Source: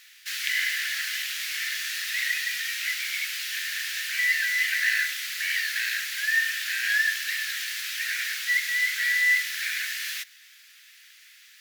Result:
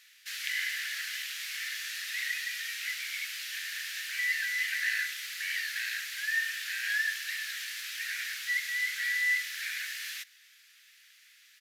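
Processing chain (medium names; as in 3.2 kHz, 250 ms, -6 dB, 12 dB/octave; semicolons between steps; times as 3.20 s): resampled via 32 kHz; trim -6.5 dB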